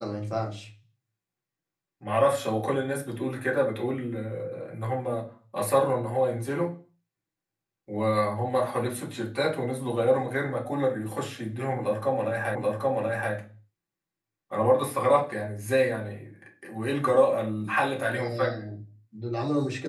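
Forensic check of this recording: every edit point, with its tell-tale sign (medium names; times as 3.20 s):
12.55 s: repeat of the last 0.78 s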